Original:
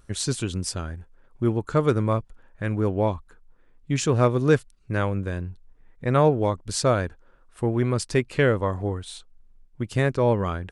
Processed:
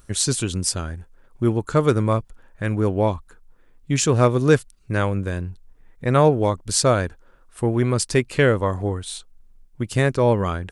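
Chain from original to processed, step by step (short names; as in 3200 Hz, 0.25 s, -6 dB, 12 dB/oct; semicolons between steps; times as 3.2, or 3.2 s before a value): high shelf 6400 Hz +9 dB; gain +3 dB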